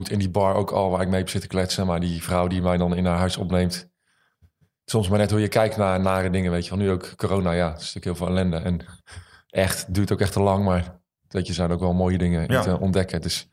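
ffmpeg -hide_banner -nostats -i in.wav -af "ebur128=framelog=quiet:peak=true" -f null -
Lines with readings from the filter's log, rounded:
Integrated loudness:
  I:         -23.2 LUFS
  Threshold: -33.7 LUFS
Loudness range:
  LRA:         2.3 LU
  Threshold: -43.8 LUFS
  LRA low:   -25.1 LUFS
  LRA high:  -22.8 LUFS
True peak:
  Peak:       -4.0 dBFS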